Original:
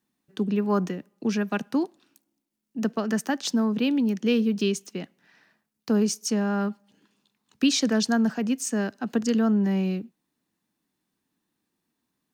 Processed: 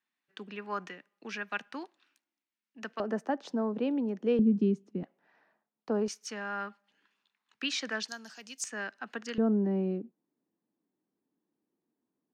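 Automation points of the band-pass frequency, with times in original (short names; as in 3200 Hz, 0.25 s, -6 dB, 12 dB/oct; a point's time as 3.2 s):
band-pass, Q 1.2
2000 Hz
from 3 s 600 Hz
from 4.39 s 230 Hz
from 5.03 s 690 Hz
from 6.08 s 1800 Hz
from 8.08 s 5400 Hz
from 8.64 s 1800 Hz
from 9.38 s 400 Hz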